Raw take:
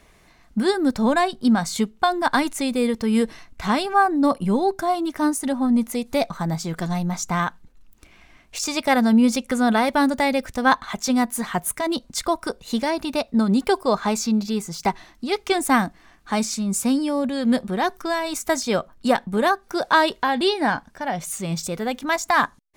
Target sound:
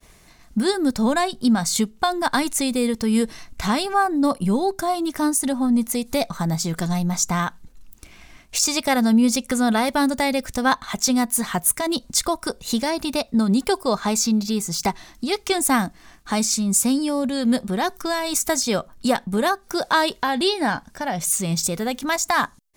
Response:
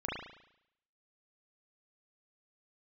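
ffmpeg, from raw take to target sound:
-filter_complex "[0:a]agate=range=-33dB:threshold=-51dB:ratio=3:detection=peak,asplit=2[link_01][link_02];[link_02]acompressor=threshold=-29dB:ratio=6,volume=2dB[link_03];[link_01][link_03]amix=inputs=2:normalize=0,bass=frequency=250:gain=3,treble=frequency=4000:gain=8,volume=-4dB"

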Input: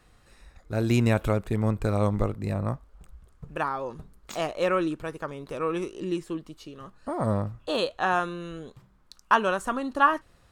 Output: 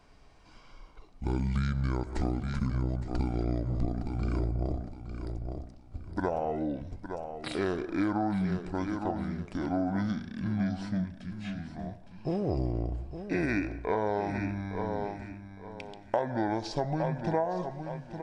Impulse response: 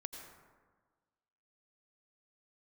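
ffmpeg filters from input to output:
-filter_complex "[0:a]asetrate=25442,aresample=44100,aecho=1:1:862|1724|2586:0.282|0.0761|0.0205,asplit=2[link_01][link_02];[1:a]atrim=start_sample=2205,afade=type=out:start_time=0.28:duration=0.01,atrim=end_sample=12789[link_03];[link_02][link_03]afir=irnorm=-1:irlink=0,volume=-7.5dB[link_04];[link_01][link_04]amix=inputs=2:normalize=0,acompressor=threshold=-24dB:ratio=8,volume=-1dB"

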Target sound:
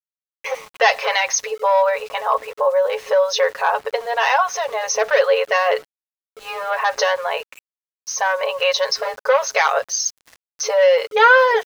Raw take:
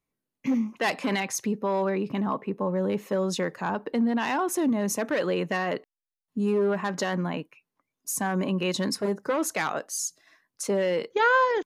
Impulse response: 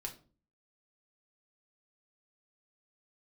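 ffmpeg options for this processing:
-filter_complex "[0:a]afftfilt=real='re*between(b*sr/4096,430,6500)':imag='im*between(b*sr/4096,430,6500)':win_size=4096:overlap=0.75,aecho=1:1:7.3:0.63,asplit=2[link_01][link_02];[link_02]acompressor=threshold=-34dB:ratio=6,volume=-3dB[link_03];[link_01][link_03]amix=inputs=2:normalize=0,aeval=exprs='val(0)*gte(abs(val(0)),0.00501)':channel_layout=same,volume=8.5dB"

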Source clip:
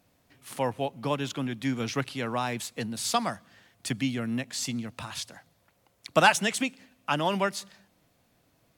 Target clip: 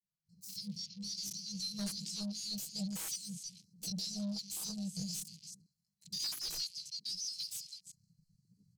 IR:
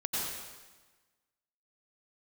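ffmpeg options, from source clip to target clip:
-filter_complex "[0:a]asplit=2[link_01][link_02];[link_02]adelay=330,highpass=300,lowpass=3400,asoftclip=type=hard:threshold=-16dB,volume=-11dB[link_03];[link_01][link_03]amix=inputs=2:normalize=0,asetrate=78577,aresample=44100,atempo=0.561231,dynaudnorm=framelen=220:gausssize=3:maxgain=8.5dB,agate=range=-33dB:threshold=-59dB:ratio=3:detection=peak,afftfilt=real='re*(1-between(b*sr/4096,210,4000))':imag='im*(1-between(b*sr/4096,210,4000))':win_size=4096:overlap=0.75,asoftclip=type=tanh:threshold=-33.5dB,aecho=1:1:6.3:0.53,afwtdn=0.00282,highshelf=frequency=10000:gain=-12,volume=-1dB"

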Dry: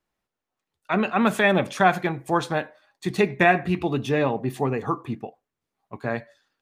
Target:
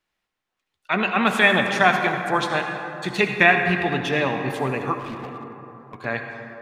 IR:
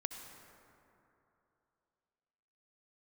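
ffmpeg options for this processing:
-filter_complex "[0:a]equalizer=frequency=2800:width=0.53:gain=10[link_01];[1:a]atrim=start_sample=2205[link_02];[link_01][link_02]afir=irnorm=-1:irlink=0,asettb=1/sr,asplit=3[link_03][link_04][link_05];[link_03]atrim=end=4.994[link_06];[link_04]atrim=start=4.99:end=6.05,asetpts=PTS-STARTPTS,afade=type=in:duration=0.004:curve=qsin,afade=type=out:start_time=1.056:duration=0.004:curve=qsin,asoftclip=type=hard:threshold=-28dB[link_07];[link_05]atrim=start=6.046[link_08];[link_06][link_07]acrossfade=duration=0.004:curve1=hsin:curve2=qsin[link_09];[link_09][link_08]acrossfade=duration=0.004:curve1=qsin:curve2=hsin,volume=-1dB"

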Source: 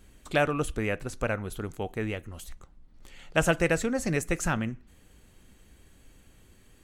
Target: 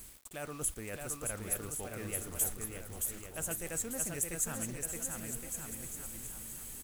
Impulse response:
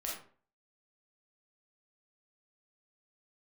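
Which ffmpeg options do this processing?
-af "areverse,acompressor=threshold=-43dB:ratio=5,areverse,aexciter=amount=5.7:drive=8.6:freq=6600,acrusher=bits=8:mix=0:aa=0.000001,aecho=1:1:620|1116|1513|1830|2084:0.631|0.398|0.251|0.158|0.1,volume=1dB"

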